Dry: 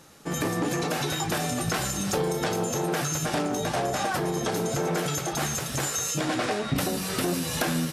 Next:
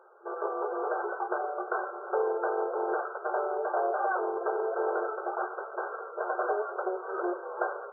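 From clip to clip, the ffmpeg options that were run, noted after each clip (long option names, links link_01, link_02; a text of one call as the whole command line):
ffmpeg -i in.wav -af "afftfilt=real='re*between(b*sr/4096,350,1600)':imag='im*between(b*sr/4096,350,1600)':win_size=4096:overlap=0.75" out.wav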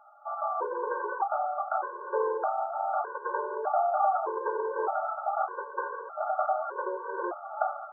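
ffmpeg -i in.wav -af "equalizer=frequency=250:width_type=o:width=1:gain=-10,equalizer=frequency=500:width_type=o:width=1:gain=4,equalizer=frequency=1000:width_type=o:width=1:gain=12,afftfilt=real='re*gt(sin(2*PI*0.82*pts/sr)*(1-2*mod(floor(b*sr/1024/290),2)),0)':imag='im*gt(sin(2*PI*0.82*pts/sr)*(1-2*mod(floor(b*sr/1024/290),2)),0)':win_size=1024:overlap=0.75,volume=-3dB" out.wav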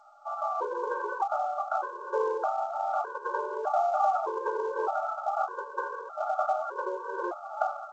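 ffmpeg -i in.wav -af "acrusher=bits=7:mode=log:mix=0:aa=0.000001" -ar 16000 -c:a g722 out.g722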